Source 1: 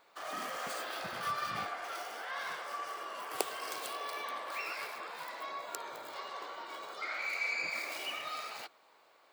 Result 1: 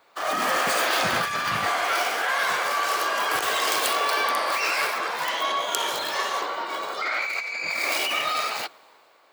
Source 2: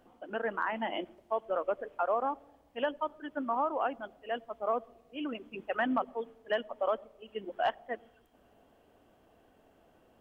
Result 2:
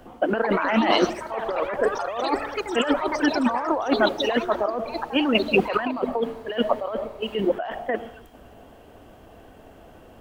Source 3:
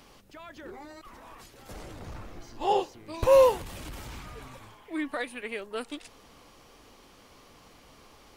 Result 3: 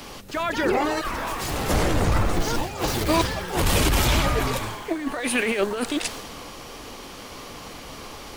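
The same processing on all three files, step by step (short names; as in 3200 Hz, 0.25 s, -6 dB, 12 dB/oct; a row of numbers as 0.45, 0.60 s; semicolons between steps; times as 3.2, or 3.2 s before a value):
negative-ratio compressor -40 dBFS, ratio -1; echoes that change speed 0.286 s, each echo +6 st, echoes 3, each echo -6 dB; three-band expander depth 40%; match loudness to -24 LUFS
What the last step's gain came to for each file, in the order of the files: +15.0, +16.5, +13.5 dB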